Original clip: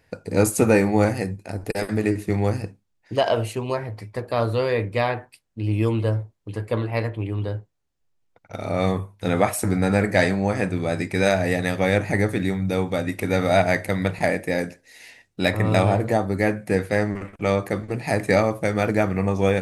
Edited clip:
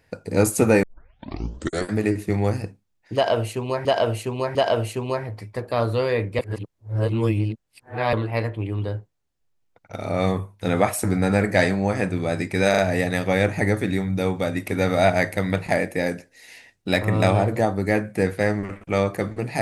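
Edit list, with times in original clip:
0:00.83: tape start 1.11 s
0:03.15–0:03.85: repeat, 3 plays
0:04.99–0:06.73: reverse
0:11.30: stutter 0.04 s, 3 plays

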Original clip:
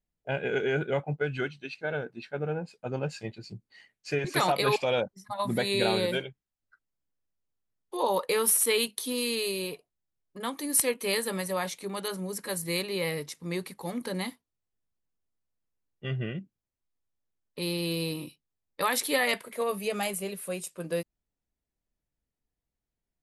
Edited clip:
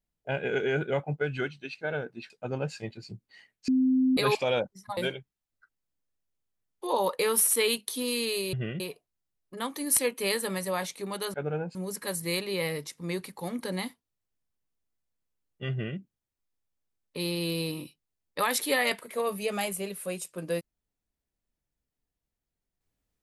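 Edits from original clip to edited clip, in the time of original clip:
0:02.30–0:02.71: move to 0:12.17
0:04.09–0:04.58: beep over 259 Hz −20 dBFS
0:05.38–0:06.07: remove
0:16.13–0:16.40: duplicate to 0:09.63

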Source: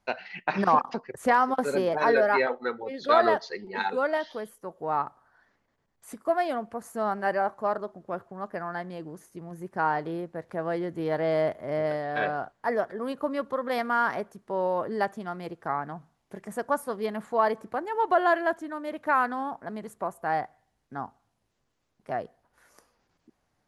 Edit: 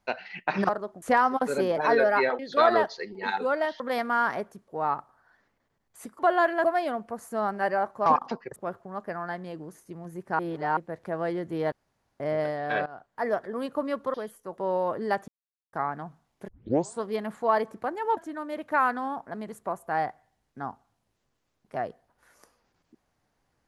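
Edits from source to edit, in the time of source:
0:00.69–0:01.19: swap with 0:07.69–0:08.02
0:02.56–0:02.91: remove
0:04.32–0:04.76: swap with 0:13.60–0:14.48
0:09.85–0:10.23: reverse
0:11.18–0:11.66: fill with room tone
0:12.32–0:12.80: fade in, from −17 dB
0:15.18–0:15.63: silence
0:16.38: tape start 0.55 s
0:18.07–0:18.52: move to 0:06.27

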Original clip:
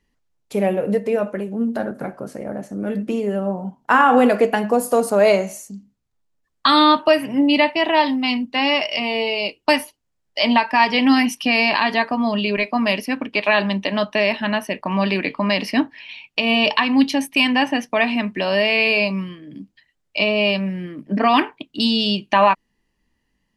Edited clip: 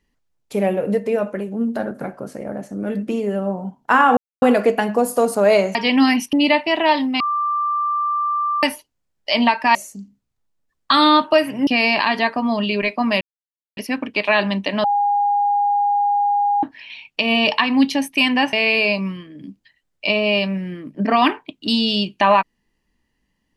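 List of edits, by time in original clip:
0:04.17: splice in silence 0.25 s
0:05.50–0:07.42: swap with 0:10.84–0:11.42
0:08.29–0:09.72: beep over 1,180 Hz −17.5 dBFS
0:12.96: splice in silence 0.56 s
0:14.03–0:15.82: beep over 816 Hz −14.5 dBFS
0:17.72–0:18.65: remove

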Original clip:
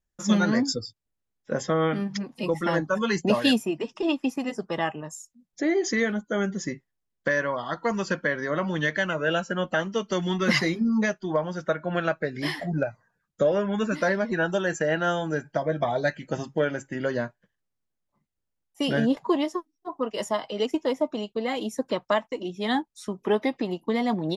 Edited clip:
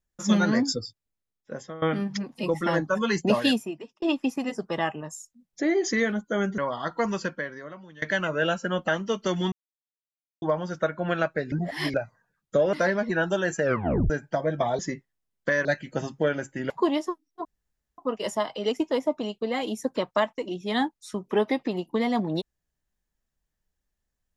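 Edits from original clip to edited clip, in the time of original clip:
0:00.85–0:01.82: fade out, to −19 dB
0:03.38–0:04.02: fade out
0:06.58–0:07.44: move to 0:16.01
0:07.96–0:08.88: fade out quadratic, to −22 dB
0:10.38–0:11.28: silence
0:12.38–0:12.80: reverse
0:13.59–0:13.95: remove
0:14.84: tape stop 0.48 s
0:17.06–0:19.17: remove
0:19.92: splice in room tone 0.53 s

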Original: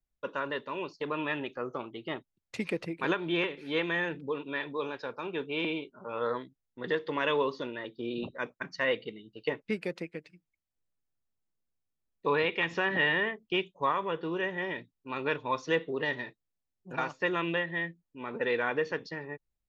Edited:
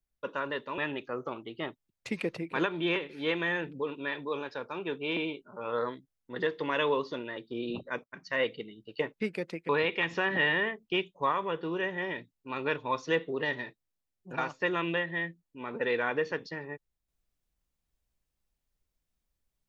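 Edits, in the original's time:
0:00.78–0:01.26: remove
0:08.52–0:08.90: fade in, from −15 dB
0:10.17–0:12.29: remove

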